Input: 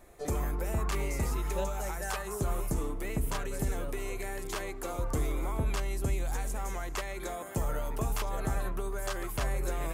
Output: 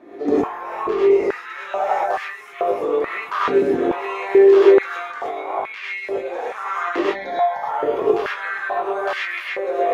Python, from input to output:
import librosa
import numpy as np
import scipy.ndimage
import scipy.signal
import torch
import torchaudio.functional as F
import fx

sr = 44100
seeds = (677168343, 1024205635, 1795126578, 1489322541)

p1 = fx.peak_eq(x, sr, hz=2900.0, db=-9.5, octaves=2.1, at=(1.93, 2.46))
p2 = fx.fixed_phaser(p1, sr, hz=1800.0, stages=8, at=(7.01, 7.63))
p3 = fx.doubler(p2, sr, ms=20.0, db=-5)
p4 = fx.over_compress(p3, sr, threshold_db=-31.0, ratio=-0.5)
p5 = p3 + (p4 * librosa.db_to_amplitude(3.0))
p6 = fx.air_absorb(p5, sr, metres=290.0)
p7 = fx.rev_gated(p6, sr, seeds[0], gate_ms=140, shape='rising', drr_db=-6.0)
p8 = fx.filter_held_highpass(p7, sr, hz=2.3, low_hz=300.0, high_hz=2100.0)
y = p8 * librosa.db_to_amplitude(-1.5)